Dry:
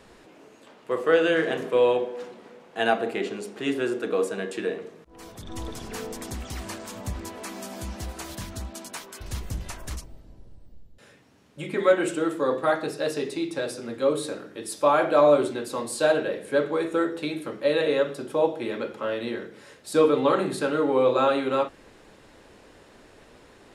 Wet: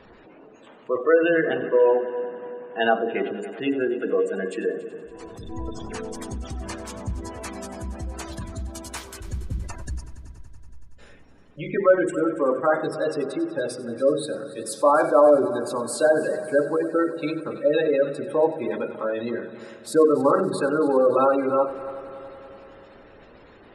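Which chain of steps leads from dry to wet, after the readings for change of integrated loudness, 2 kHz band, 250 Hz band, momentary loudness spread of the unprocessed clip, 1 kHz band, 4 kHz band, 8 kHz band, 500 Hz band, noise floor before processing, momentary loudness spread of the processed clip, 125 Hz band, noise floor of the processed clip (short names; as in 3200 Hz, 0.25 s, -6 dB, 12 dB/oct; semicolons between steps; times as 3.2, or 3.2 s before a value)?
+2.5 dB, +1.0 dB, +2.5 dB, 16 LU, +2.0 dB, -4.0 dB, 0.0 dB, +2.5 dB, -53 dBFS, 16 LU, +2.5 dB, -49 dBFS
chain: spectral gate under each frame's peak -20 dB strong; multi-head echo 94 ms, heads first and third, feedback 68%, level -17.5 dB; gain +2.5 dB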